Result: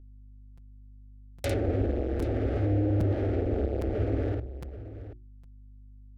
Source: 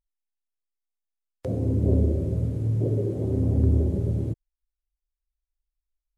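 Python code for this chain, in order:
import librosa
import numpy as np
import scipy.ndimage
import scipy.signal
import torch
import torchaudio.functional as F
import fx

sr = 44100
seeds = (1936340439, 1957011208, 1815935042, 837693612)

y = fx.partial_stretch(x, sr, pct=111)
y = fx.curve_eq(y, sr, hz=(190.0, 400.0, 710.0, 1000.0), db=(0, -16, -7, 3))
y = fx.quant_companded(y, sr, bits=2)
y = fx.peak_eq(y, sr, hz=150.0, db=-8.5, octaves=0.46)
y = fx.hum_notches(y, sr, base_hz=60, count=6)
y = fx.env_lowpass_down(y, sr, base_hz=560.0, full_db=-23.0)
y = fx.highpass(y, sr, hz=58.0, slope=6)
y = fx.echo_multitap(y, sr, ms=(52, 783), db=(-3.5, -14.5))
y = fx.add_hum(y, sr, base_hz=50, snr_db=21)
y = fx.fixed_phaser(y, sr, hz=420.0, stages=4)
y = fx.buffer_crackle(y, sr, first_s=0.57, period_s=0.81, block=256, kind='repeat')
y = y * librosa.db_to_amplitude(6.5)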